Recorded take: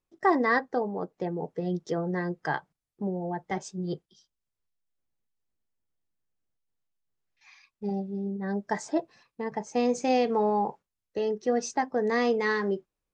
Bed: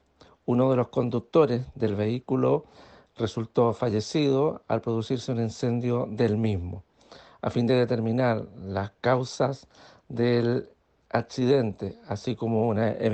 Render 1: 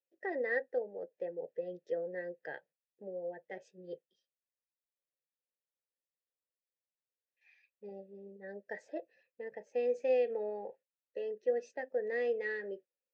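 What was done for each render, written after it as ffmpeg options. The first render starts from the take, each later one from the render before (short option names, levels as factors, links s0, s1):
-filter_complex "[0:a]asplit=3[s0][s1][s2];[s0]bandpass=f=530:t=q:w=8,volume=1[s3];[s1]bandpass=f=1840:t=q:w=8,volume=0.501[s4];[s2]bandpass=f=2480:t=q:w=8,volume=0.355[s5];[s3][s4][s5]amix=inputs=3:normalize=0"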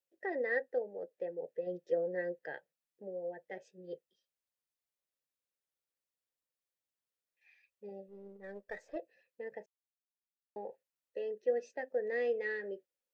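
-filter_complex "[0:a]asettb=1/sr,asplit=3[s0][s1][s2];[s0]atrim=end=1.664[s3];[s1]atrim=start=1.66:end=2.39,asetpts=PTS-STARTPTS,afade=t=in:d=0.004:c=qsin,afade=t=out:st=0.726:d=0.004:c=qsin,aecho=1:1:5.7:0.65,atrim=end_sample=32193[s4];[s2]atrim=start=2.386[s5];[s3][s4]acrossfade=d=0.004:c1=hsin:c2=qsin[s6];[s6][s5]acrossfade=d=0.004:c1=qsin:c2=hsin,asettb=1/sr,asplit=3[s7][s8][s9];[s7]atrim=end=8.084[s10];[s8]atrim=start=8.08:end=8.96,asetpts=PTS-STARTPTS,afade=t=in:d=0.004:c=qsin,afade=t=out:st=0.876:d=0.004:c=qsin,aeval=exprs='if(lt(val(0),0),0.708*val(0),val(0))':c=same[s11];[s9]atrim=start=8.956[s12];[s10][s11]acrossfade=d=0.004:c1=hsin:c2=qsin[s13];[s13][s12]acrossfade=d=0.004:c1=qsin:c2=hsin,asplit=3[s14][s15][s16];[s14]atrim=end=9.66,asetpts=PTS-STARTPTS,afade=t=out:st=9.656:d=0.004:c=hsin[s17];[s15]atrim=start=9.66:end=10.56,asetpts=PTS-STARTPTS,volume=0[s18];[s16]atrim=start=10.56,asetpts=PTS-STARTPTS,afade=t=in:d=0.004:c=hsin[s19];[s17][s18][s19]concat=n=3:v=0:a=1"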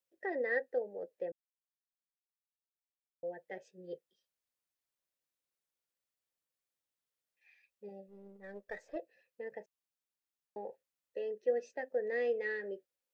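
-filter_complex "[0:a]asettb=1/sr,asplit=3[s0][s1][s2];[s0]atrim=end=7.884[s3];[s1]atrim=start=7.88:end=8.54,asetpts=PTS-STARTPTS,afade=t=in:d=0.004:c=qsin,afade=t=out:st=0.656:d=0.004:c=qsin,equalizer=f=430:t=o:w=0.77:g=-5[s4];[s2]atrim=start=8.536[s5];[s3][s4]acrossfade=d=0.004:c1=hsin:c2=qsin[s6];[s6][s5]acrossfade=d=0.004:c1=qsin:c2=hsin,asplit=3[s7][s8][s9];[s7]atrim=end=1.32,asetpts=PTS-STARTPTS,afade=t=out:st=1.316:d=0.004:c=hsin[s10];[s8]atrim=start=1.32:end=3.23,asetpts=PTS-STARTPTS,volume=0[s11];[s9]atrim=start=3.23,asetpts=PTS-STARTPTS,afade=t=in:d=0.004:c=hsin[s12];[s10][s11][s12]concat=n=3:v=0:a=1"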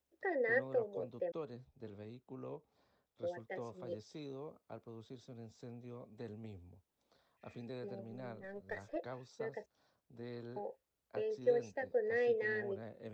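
-filter_complex "[1:a]volume=0.0596[s0];[0:a][s0]amix=inputs=2:normalize=0"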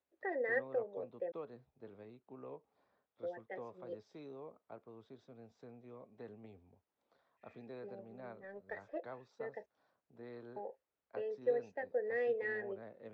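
-af "lowpass=1900,aemphasis=mode=production:type=bsi"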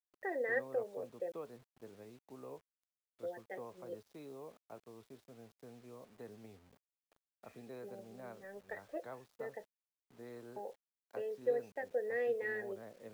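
-af "acrusher=bits=10:mix=0:aa=0.000001"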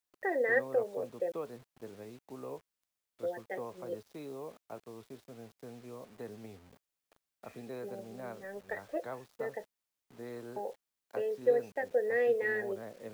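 -af "volume=2.11"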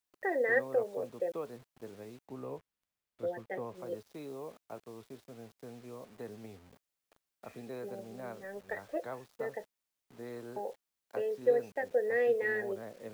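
-filter_complex "[0:a]asettb=1/sr,asplit=3[s0][s1][s2];[s0]atrim=end=2.274[s3];[s1]atrim=start=2.27:end=3.75,asetpts=PTS-STARTPTS,afade=t=in:d=0.004:c=qsin,afade=t=out:st=1.476:d=0.004:c=qsin,bass=f=250:g=5,treble=f=4000:g=-6[s4];[s2]atrim=start=3.746[s5];[s3][s4]acrossfade=d=0.004:c1=hsin:c2=qsin[s6];[s6][s5]acrossfade=d=0.004:c1=qsin:c2=hsin"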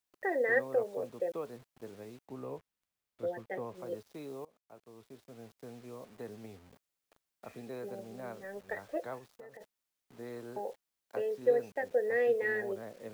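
-filter_complex "[0:a]asplit=3[s0][s1][s2];[s0]afade=t=out:st=9.18:d=0.02[s3];[s1]acompressor=threshold=0.00447:ratio=8:attack=3.2:release=140:knee=1:detection=peak,afade=t=in:st=9.18:d=0.02,afade=t=out:st=9.6:d=0.02[s4];[s2]afade=t=in:st=9.6:d=0.02[s5];[s3][s4][s5]amix=inputs=3:normalize=0,asplit=2[s6][s7];[s6]atrim=end=4.45,asetpts=PTS-STARTPTS,afade=t=out:st=4.446:d=0.004:c=hsin:silence=0.0749894[s8];[s7]atrim=start=4.45,asetpts=PTS-STARTPTS,afade=t=in:d=1.08:silence=0.0749894[s9];[s8][s9]concat=n=2:v=0:a=1"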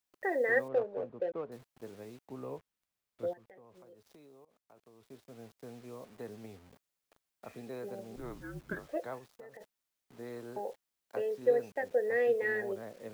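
-filter_complex "[0:a]asettb=1/sr,asplit=3[s0][s1][s2];[s0]atrim=end=0.684[s3];[s1]atrim=start=0.68:end=1.52,asetpts=PTS-STARTPTS,afade=t=in:d=0.004:c=qsin,afade=t=out:st=0.836:d=0.004:c=qsin,adynamicsmooth=sensitivity=6:basefreq=1200[s4];[s2]atrim=start=1.516[s5];[s3][s4]acrossfade=d=0.004:c1=hsin:c2=qsin[s6];[s6][s5]acrossfade=d=0.004:c1=qsin:c2=hsin,asettb=1/sr,asplit=3[s7][s8][s9];[s7]atrim=end=3.334[s10];[s8]atrim=start=3.33:end=5.1,asetpts=PTS-STARTPTS,afade=t=in:d=0.004:c=qsin,afade=t=out:st=1.766:d=0.004:c=qsin,acompressor=threshold=0.00178:ratio=6:attack=3.2:release=140:knee=1:detection=peak[s11];[s9]atrim=start=5.096[s12];[s10][s11]acrossfade=d=0.004:c1=hsin:c2=qsin[s13];[s13][s12]acrossfade=d=0.004:c1=qsin:c2=hsin,asettb=1/sr,asplit=3[s14][s15][s16];[s14]atrim=end=8.164[s17];[s15]atrim=start=8.16:end=8.87,asetpts=PTS-STARTPTS,afade=t=in:d=0.004:c=qsin,afade=t=out:st=0.706:d=0.004:c=qsin,afreqshift=-250[s18];[s16]atrim=start=8.866[s19];[s17][s18]acrossfade=d=0.004:c1=hsin:c2=qsin[s20];[s20][s19]acrossfade=d=0.004:c1=qsin:c2=hsin"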